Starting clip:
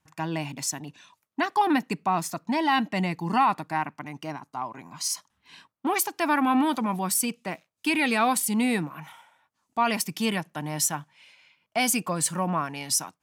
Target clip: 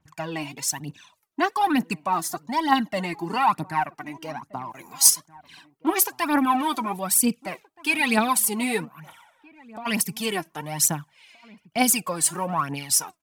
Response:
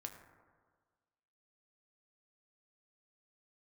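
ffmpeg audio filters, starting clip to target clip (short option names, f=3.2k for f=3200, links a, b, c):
-filter_complex "[0:a]asettb=1/sr,asplit=3[a][b][c];[a]atrim=end=4.704[d];[b]atrim=start=4.7:end=5.1,asetpts=PTS-STARTPTS,afade=t=in:d=0.004:c=qsin,afade=t=out:st=0.396:d=0.004:c=qsin,aemphasis=mode=production:type=75fm[e];[c]atrim=start=5.096[f];[d][e]acrossfade=d=0.004:c1=hsin:c2=qsin[g];[g][f]acrossfade=d=0.004:c1=qsin:c2=hsin,aphaser=in_gain=1:out_gain=1:delay=3.2:decay=0.69:speed=1.1:type=triangular,asettb=1/sr,asplit=3[h][i][j];[h]atrim=end=2.134[k];[i]atrim=start=2.13:end=3.04,asetpts=PTS-STARTPTS,afade=t=in:d=0.004:c=qsin,afade=t=out:st=0.906:d=0.004:c=qsin,bandreject=f=2.5k:w=5.5[l];[j]atrim=start=3.036[m];[k][l]acrossfade=d=0.004:c1=hsin:c2=qsin[n];[n][m]acrossfade=d=0.004:c1=qsin:c2=hsin,asplit=3[o][p][q];[o]afade=t=out:st=8.84:d=0.02[r];[p]acompressor=threshold=-38dB:ratio=6,afade=t=in:st=8.84:d=0.02,afade=t=out:st=9.85:d=0.02[s];[q]afade=t=in:st=9.85:d=0.02[t];[r][s][t]amix=inputs=3:normalize=0,asplit=2[u][v];[v]adelay=1574,volume=-21dB,highshelf=f=4k:g=-35.4[w];[u][w]amix=inputs=2:normalize=0,adynamicequalizer=threshold=0.0112:dfrequency=7400:dqfactor=0.7:tfrequency=7400:tqfactor=0.7:attack=5:release=100:ratio=0.375:range=2.5:mode=boostabove:tftype=highshelf,volume=-1dB"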